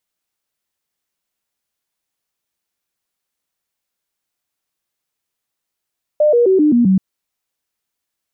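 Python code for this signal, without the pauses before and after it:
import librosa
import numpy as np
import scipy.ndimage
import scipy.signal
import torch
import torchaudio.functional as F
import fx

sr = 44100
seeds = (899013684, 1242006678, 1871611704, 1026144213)

y = fx.stepped_sweep(sr, from_hz=602.0, direction='down', per_octave=3, tones=6, dwell_s=0.13, gap_s=0.0, level_db=-8.5)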